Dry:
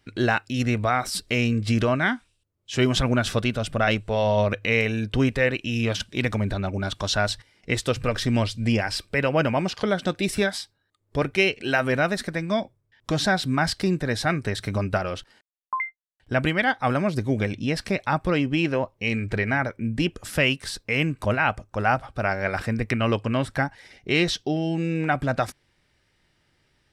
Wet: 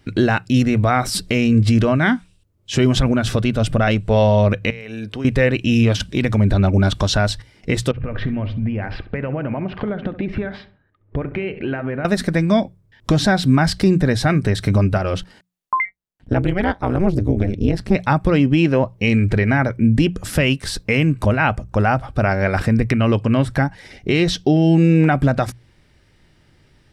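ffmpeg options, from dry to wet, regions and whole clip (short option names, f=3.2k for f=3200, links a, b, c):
-filter_complex "[0:a]asettb=1/sr,asplit=3[a][b][c];[a]atrim=end=4.704[d];[b]atrim=start=4.7:end=5.25,asetpts=PTS-STARTPTS,afade=t=in:d=0.004:c=qsin,afade=t=out:st=0.546:d=0.004:c=qsin,highpass=f=410:p=1,equalizer=f=6.6k:w=4.2:g=-3.5,acompressor=threshold=-36dB:ratio=8:attack=3.2:release=140:knee=1:detection=peak[e];[c]atrim=start=5.246[f];[d][e]acrossfade=d=0.004:c1=hsin:c2=qsin[g];[g][f]acrossfade=d=0.004:c1=qsin:c2=hsin,asettb=1/sr,asplit=3[h][i][j];[h]atrim=end=7.914[k];[i]atrim=start=7.91:end=12.05,asetpts=PTS-STARTPTS,afade=t=in:d=0.004:c=qsin,afade=t=out:st=4.136:d=0.004:c=qsin,lowpass=f=2.5k:w=0.5412,lowpass=f=2.5k:w=1.3066,acompressor=threshold=-31dB:ratio=16:attack=3.2:release=140:knee=1:detection=peak,asplit=2[l][m];[m]adelay=67,lowpass=f=1.6k:p=1,volume=-12dB,asplit=2[n][o];[o]adelay=67,lowpass=f=1.6k:p=1,volume=0.43,asplit=2[p][q];[q]adelay=67,lowpass=f=1.6k:p=1,volume=0.43,asplit=2[r][s];[s]adelay=67,lowpass=f=1.6k:p=1,volume=0.43[t];[l][n][p][r][t]amix=inputs=5:normalize=0,atrim=end_sample=182574[u];[j]atrim=start=12.046[v];[k][u]acrossfade=d=0.004:c1=hsin:c2=qsin[w];[w][v]acrossfade=d=0.004:c1=qsin:c2=hsin,asettb=1/sr,asplit=3[x][y][z];[x]atrim=end=15.854[aa];[y]atrim=start=15.85:end=17.95,asetpts=PTS-STARTPTS,afade=t=in:d=0.004:c=qsin,afade=t=out:st=2.096:d=0.004:c=qsin,tiltshelf=f=810:g=4,tremolo=f=190:d=1[ab];[z]atrim=start=17.946[ac];[aa][ab]acrossfade=d=0.004:c1=hsin:c2=qsin[ad];[ad][ac]acrossfade=d=0.004:c1=qsin:c2=hsin,lowshelf=f=420:g=9,alimiter=limit=-11.5dB:level=0:latency=1:release=287,bandreject=f=60:t=h:w=6,bandreject=f=120:t=h:w=6,bandreject=f=180:t=h:w=6,volume=7dB"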